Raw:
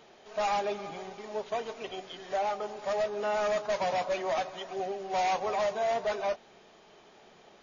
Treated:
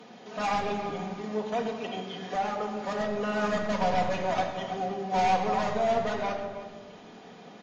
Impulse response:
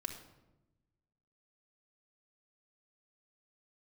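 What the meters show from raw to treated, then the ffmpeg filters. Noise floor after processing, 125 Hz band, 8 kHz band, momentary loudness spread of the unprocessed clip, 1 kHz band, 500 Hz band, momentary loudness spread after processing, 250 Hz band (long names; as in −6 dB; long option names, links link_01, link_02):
−49 dBFS, +13.0 dB, can't be measured, 10 LU, +3.5 dB, +0.5 dB, 15 LU, +11.5 dB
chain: -filter_complex "[0:a]highpass=97,bass=frequency=250:gain=14,treble=frequency=4000:gain=-2,asplit=2[link_01][link_02];[link_02]acompressor=threshold=-46dB:ratio=4,volume=-0.5dB[link_03];[link_01][link_03]amix=inputs=2:normalize=0,aeval=exprs='0.126*(cos(1*acos(clip(val(0)/0.126,-1,1)))-cos(1*PI/2))+0.0282*(cos(2*acos(clip(val(0)/0.126,-1,1)))-cos(2*PI/2))+0.000794*(cos(8*acos(clip(val(0)/0.126,-1,1)))-cos(8*PI/2))':channel_layout=same,acrossover=split=140|600[link_04][link_05][link_06];[link_04]acrusher=bits=5:mix=0:aa=0.5[link_07];[link_07][link_05][link_06]amix=inputs=3:normalize=0,asplit=2[link_08][link_09];[link_09]adelay=314.9,volume=-13dB,highshelf=frequency=4000:gain=-7.08[link_10];[link_08][link_10]amix=inputs=2:normalize=0[link_11];[1:a]atrim=start_sample=2205,asetrate=33075,aresample=44100[link_12];[link_11][link_12]afir=irnorm=-1:irlink=0"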